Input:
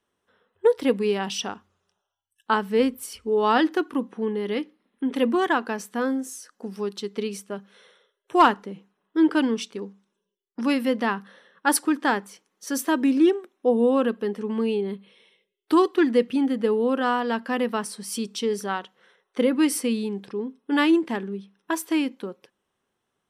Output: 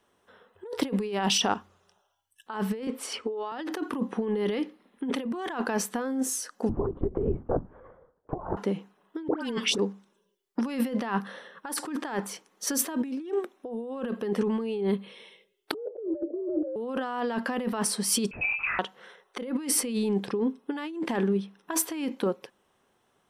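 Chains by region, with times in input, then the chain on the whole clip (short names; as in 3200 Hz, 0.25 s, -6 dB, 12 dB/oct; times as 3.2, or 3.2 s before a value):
2.87–3.52 HPF 340 Hz + air absorption 78 m + three-band squash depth 40%
6.69–8.57 LPF 1100 Hz 24 dB/oct + LPC vocoder at 8 kHz whisper
9.28–9.78 dispersion highs, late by 0.102 s, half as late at 1500 Hz + three-band squash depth 100%
15.74–16.76 Chebyshev band-pass 150–570 Hz, order 4 + frequency shift +100 Hz
18.31–18.79 inverted band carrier 2800 Hz + compressor 12:1, threshold -32 dBFS + LPC vocoder at 8 kHz whisper
whole clip: bell 730 Hz +4 dB 1.2 oct; negative-ratio compressor -30 dBFS, ratio -1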